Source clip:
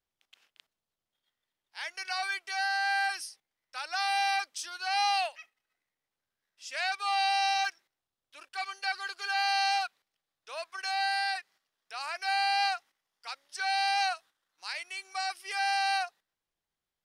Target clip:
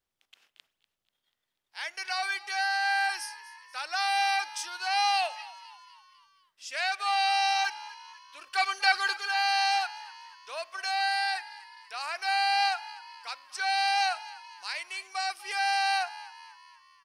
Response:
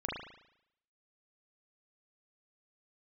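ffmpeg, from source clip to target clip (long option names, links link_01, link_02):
-filter_complex "[0:a]asettb=1/sr,asplit=3[link_01][link_02][link_03];[link_01]atrim=end=8.464[link_04];[link_02]atrim=start=8.46:end=9.17,asetpts=PTS-STARTPTS,afade=type=in:duration=0.004:curve=qsin,afade=type=out:start_time=0.706:duration=0.004:curve=qsin,acontrast=82[link_05];[link_03]atrim=start=9.166[link_06];[link_04][link_05]acrossfade=duration=0.004:curve1=hsin:curve2=qsin[link_07];[link_07][link_06]acrossfade=duration=0.004:curve1=qsin:curve2=hsin,asplit=6[link_08][link_09][link_10][link_11][link_12][link_13];[link_09]adelay=244,afreqshift=69,volume=-18dB[link_14];[link_10]adelay=488,afreqshift=138,volume=-23.4dB[link_15];[link_11]adelay=732,afreqshift=207,volume=-28.7dB[link_16];[link_12]adelay=976,afreqshift=276,volume=-34.1dB[link_17];[link_13]adelay=1220,afreqshift=345,volume=-39.4dB[link_18];[link_08][link_14][link_15][link_16][link_17][link_18]amix=inputs=6:normalize=0,asplit=2[link_19][link_20];[1:a]atrim=start_sample=2205[link_21];[link_20][link_21]afir=irnorm=-1:irlink=0,volume=-24.5dB[link_22];[link_19][link_22]amix=inputs=2:normalize=0,volume=1.5dB"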